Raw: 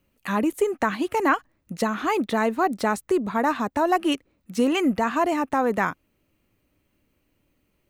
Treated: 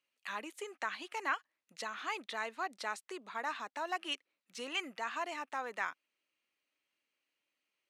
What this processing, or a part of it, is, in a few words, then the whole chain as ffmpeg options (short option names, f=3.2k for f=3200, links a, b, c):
piezo pickup straight into a mixer: -af "highpass=120,lowpass=5k,bass=f=250:g=-5,treble=f=4k:g=-6,aderivative,volume=2.5dB"